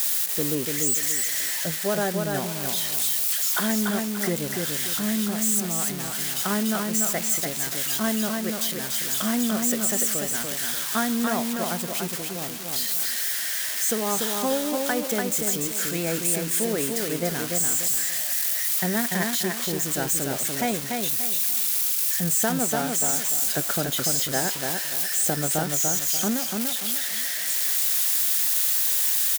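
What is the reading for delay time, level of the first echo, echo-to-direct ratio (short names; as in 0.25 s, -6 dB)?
0.291 s, -4.0 dB, -3.5 dB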